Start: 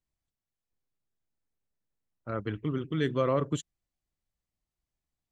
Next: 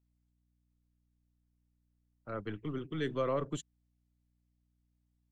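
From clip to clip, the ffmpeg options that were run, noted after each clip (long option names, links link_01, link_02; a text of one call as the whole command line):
ffmpeg -i in.wav -filter_complex "[0:a]acrossover=split=180|540|1400[link_01][link_02][link_03][link_04];[link_01]aeval=exprs='clip(val(0),-1,0.00282)':channel_layout=same[link_05];[link_05][link_02][link_03][link_04]amix=inputs=4:normalize=0,aeval=exprs='val(0)+0.000316*(sin(2*PI*60*n/s)+sin(2*PI*2*60*n/s)/2+sin(2*PI*3*60*n/s)/3+sin(2*PI*4*60*n/s)/4+sin(2*PI*5*60*n/s)/5)':channel_layout=same,volume=-5dB" out.wav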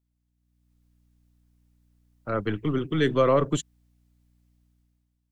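ffmpeg -i in.wav -af "dynaudnorm=framelen=130:gausssize=9:maxgain=12dB" out.wav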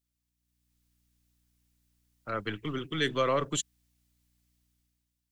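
ffmpeg -i in.wav -af "tiltshelf=frequency=1400:gain=-7,volume=-2.5dB" out.wav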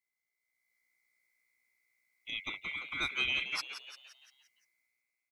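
ffmpeg -i in.wav -filter_complex "[0:a]afftfilt=real='real(if(lt(b,920),b+92*(1-2*mod(floor(b/92),2)),b),0)':imag='imag(if(lt(b,920),b+92*(1-2*mod(floor(b/92),2)),b),0)':win_size=2048:overlap=0.75,asplit=7[link_01][link_02][link_03][link_04][link_05][link_06][link_07];[link_02]adelay=173,afreqshift=120,volume=-10dB[link_08];[link_03]adelay=346,afreqshift=240,volume=-15.8dB[link_09];[link_04]adelay=519,afreqshift=360,volume=-21.7dB[link_10];[link_05]adelay=692,afreqshift=480,volume=-27.5dB[link_11];[link_06]adelay=865,afreqshift=600,volume=-33.4dB[link_12];[link_07]adelay=1038,afreqshift=720,volume=-39.2dB[link_13];[link_01][link_08][link_09][link_10][link_11][link_12][link_13]amix=inputs=7:normalize=0,volume=-6dB" out.wav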